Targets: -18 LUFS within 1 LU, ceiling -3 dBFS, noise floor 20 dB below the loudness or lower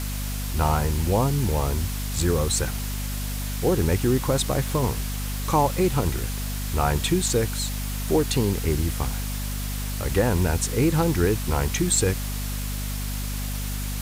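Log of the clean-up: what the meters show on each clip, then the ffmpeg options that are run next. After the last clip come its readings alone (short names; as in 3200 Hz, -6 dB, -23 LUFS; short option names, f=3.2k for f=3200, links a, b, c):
hum 50 Hz; harmonics up to 250 Hz; hum level -27 dBFS; noise floor -29 dBFS; noise floor target -45 dBFS; loudness -24.5 LUFS; peak -8.0 dBFS; loudness target -18.0 LUFS
-> -af "bandreject=f=50:t=h:w=6,bandreject=f=100:t=h:w=6,bandreject=f=150:t=h:w=6,bandreject=f=200:t=h:w=6,bandreject=f=250:t=h:w=6"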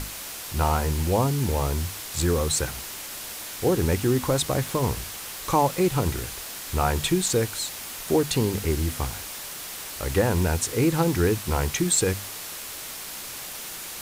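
hum none; noise floor -37 dBFS; noise floor target -46 dBFS
-> -af "afftdn=nr=9:nf=-37"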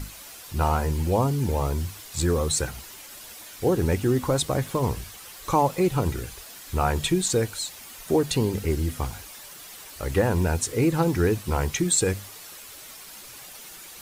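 noise floor -44 dBFS; noise floor target -45 dBFS
-> -af "afftdn=nr=6:nf=-44"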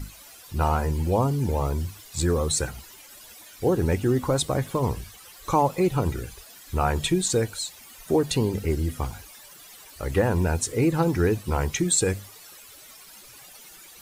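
noise floor -48 dBFS; loudness -25.0 LUFS; peak -8.0 dBFS; loudness target -18.0 LUFS
-> -af "volume=7dB,alimiter=limit=-3dB:level=0:latency=1"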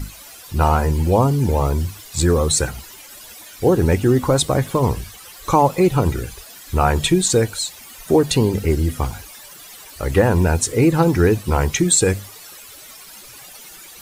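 loudness -18.0 LUFS; peak -3.0 dBFS; noise floor -41 dBFS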